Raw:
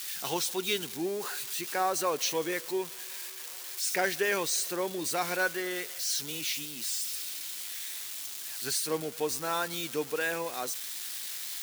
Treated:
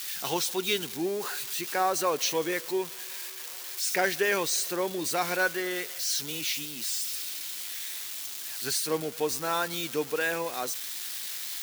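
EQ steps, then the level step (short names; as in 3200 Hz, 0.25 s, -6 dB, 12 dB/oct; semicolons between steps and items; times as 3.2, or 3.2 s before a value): bell 9000 Hz -2 dB; +2.5 dB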